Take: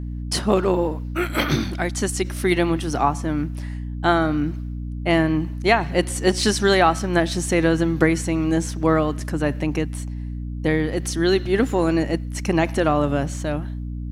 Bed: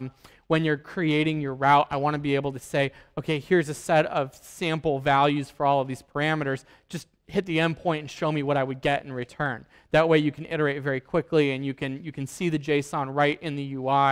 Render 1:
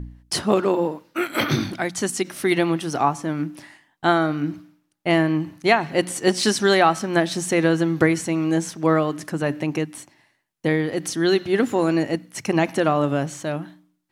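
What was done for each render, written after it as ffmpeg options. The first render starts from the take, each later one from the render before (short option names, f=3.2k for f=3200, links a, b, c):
-af "bandreject=f=60:t=h:w=4,bandreject=f=120:t=h:w=4,bandreject=f=180:t=h:w=4,bandreject=f=240:t=h:w=4,bandreject=f=300:t=h:w=4"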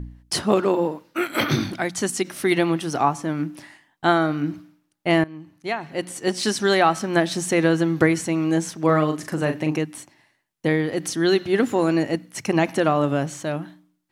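-filter_complex "[0:a]asettb=1/sr,asplit=3[a][b][c];[a]atrim=end=8.854[d];[b]atrim=start=8.85:end=9.78,asetpts=PTS-STARTPTS,afade=t=in:d=0.004:c=qsin,afade=t=out:st=0.926:d=0.004:c=qsin,asplit=2[e][f];[f]adelay=39,volume=-7dB[g];[e][g]amix=inputs=2:normalize=0,atrim=end_sample=41013[h];[c]atrim=start=9.776[i];[d][h]acrossfade=d=0.004:c1=hsin:c2=qsin[j];[j][i]acrossfade=d=0.004:c1=qsin:c2=hsin,asplit=2[k][l];[k]atrim=end=5.24,asetpts=PTS-STARTPTS,afade=t=out:st=5.236:d=0.004:c=hsin:silence=0.1[m];[l]atrim=start=5.24,asetpts=PTS-STARTPTS,afade=t=in:d=1.84:silence=0.1[n];[m][n]concat=n=2:v=0:a=1"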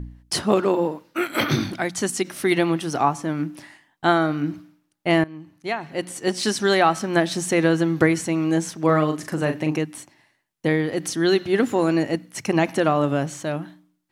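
-af anull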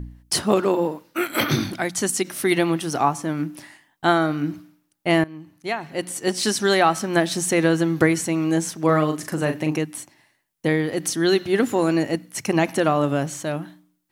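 -af "highshelf=f=9k:g=9.5"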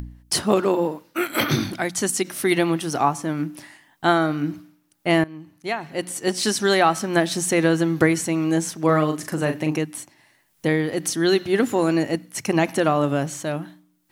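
-af "acompressor=mode=upward:threshold=-39dB:ratio=2.5"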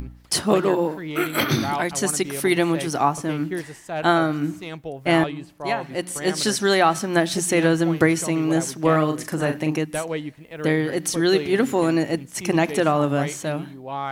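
-filter_complex "[1:a]volume=-8dB[a];[0:a][a]amix=inputs=2:normalize=0"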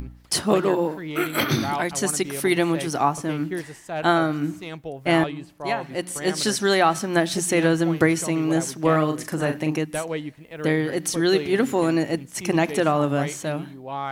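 -af "volume=-1dB"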